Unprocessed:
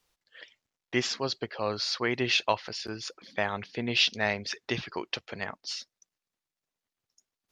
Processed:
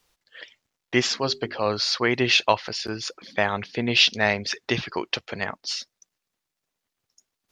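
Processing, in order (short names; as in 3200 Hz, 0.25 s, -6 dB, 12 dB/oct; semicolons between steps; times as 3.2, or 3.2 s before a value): 1.21–1.66 notches 50/100/150/200/250/300/350/400 Hz; gain +6.5 dB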